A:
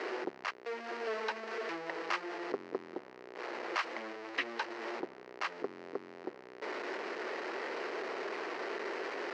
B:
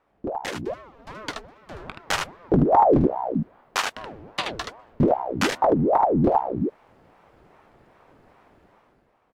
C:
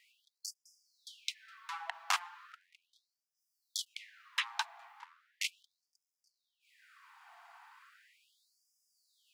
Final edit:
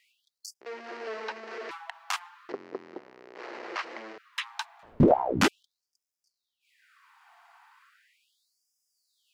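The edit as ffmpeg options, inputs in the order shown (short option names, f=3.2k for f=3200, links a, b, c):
-filter_complex "[0:a]asplit=2[a][b];[2:a]asplit=4[c][d][e][f];[c]atrim=end=0.612[g];[a]atrim=start=0.608:end=1.712[h];[d]atrim=start=1.708:end=2.492[i];[b]atrim=start=2.488:end=4.182[j];[e]atrim=start=4.178:end=4.832[k];[1:a]atrim=start=4.828:end=5.482[l];[f]atrim=start=5.478[m];[g][h]acrossfade=d=0.004:c1=hsin:c2=hsin[n];[n][i]acrossfade=d=0.004:c1=hsin:c2=hsin[o];[o][j]acrossfade=d=0.004:c1=hsin:c2=hsin[p];[p][k]acrossfade=d=0.004:c1=hsin:c2=hsin[q];[q][l]acrossfade=d=0.004:c1=hsin:c2=hsin[r];[r][m]acrossfade=d=0.004:c1=hsin:c2=hsin"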